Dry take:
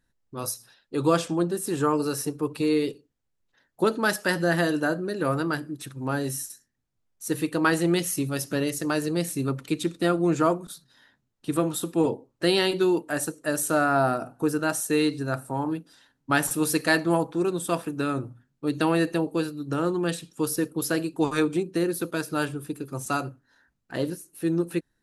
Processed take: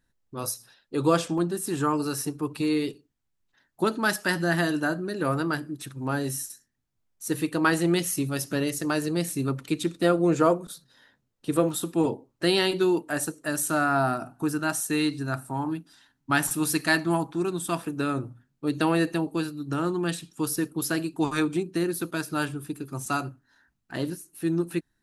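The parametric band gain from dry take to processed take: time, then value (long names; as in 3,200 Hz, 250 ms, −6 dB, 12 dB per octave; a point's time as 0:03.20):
parametric band 500 Hz 0.4 octaves
−0.5 dB
from 0:01.38 −9 dB
from 0:05.14 −3 dB
from 0:10.03 +5 dB
from 0:11.69 −4 dB
from 0:13.47 −13.5 dB
from 0:17.82 −2.5 dB
from 0:19.12 −9 dB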